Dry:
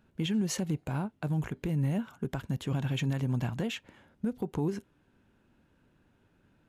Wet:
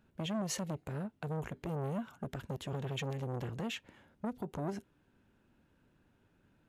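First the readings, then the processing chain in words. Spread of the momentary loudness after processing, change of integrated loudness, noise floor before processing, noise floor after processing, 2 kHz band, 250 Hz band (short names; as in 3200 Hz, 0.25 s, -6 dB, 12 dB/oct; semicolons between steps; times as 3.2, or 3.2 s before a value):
6 LU, -7.0 dB, -69 dBFS, -72 dBFS, -5.0 dB, -8.0 dB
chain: core saturation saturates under 520 Hz; gain -3 dB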